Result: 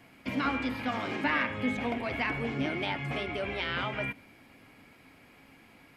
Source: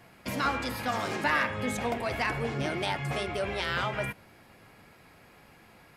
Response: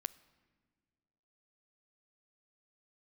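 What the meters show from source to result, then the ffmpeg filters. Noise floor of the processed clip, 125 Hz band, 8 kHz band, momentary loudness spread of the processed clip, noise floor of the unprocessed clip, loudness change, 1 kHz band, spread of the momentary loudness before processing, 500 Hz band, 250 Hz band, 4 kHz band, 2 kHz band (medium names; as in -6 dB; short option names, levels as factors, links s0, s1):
-58 dBFS, -3.0 dB, under -10 dB, 5 LU, -57 dBFS, -1.0 dB, -3.5 dB, 5 LU, -3.0 dB, +2.5 dB, -2.0 dB, -1.0 dB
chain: -filter_complex "[0:a]asplit=2[s0][s1];[s1]asplit=3[s2][s3][s4];[s2]bandpass=f=270:t=q:w=8,volume=1[s5];[s3]bandpass=f=2290:t=q:w=8,volume=0.501[s6];[s4]bandpass=f=3010:t=q:w=8,volume=0.355[s7];[s5][s6][s7]amix=inputs=3:normalize=0[s8];[1:a]atrim=start_sample=2205[s9];[s8][s9]afir=irnorm=-1:irlink=0,volume=3.35[s10];[s0][s10]amix=inputs=2:normalize=0,acrossover=split=4300[s11][s12];[s12]acompressor=threshold=0.00126:ratio=4:attack=1:release=60[s13];[s11][s13]amix=inputs=2:normalize=0,volume=0.668"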